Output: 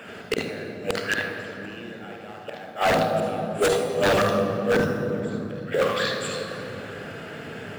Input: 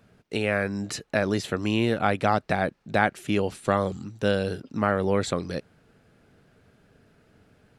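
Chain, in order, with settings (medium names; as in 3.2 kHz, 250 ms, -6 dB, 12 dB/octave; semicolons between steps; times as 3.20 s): overdrive pedal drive 22 dB, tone 7.5 kHz, clips at -5 dBFS; on a send: repeats whose band climbs or falls 244 ms, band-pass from 540 Hz, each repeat 1.4 oct, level -6 dB; on the sum: short-mantissa float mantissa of 2-bit; inverted gate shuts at -14 dBFS, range -35 dB; reverberation RT60 3.5 s, pre-delay 47 ms, DRR 1 dB; wavefolder -14 dBFS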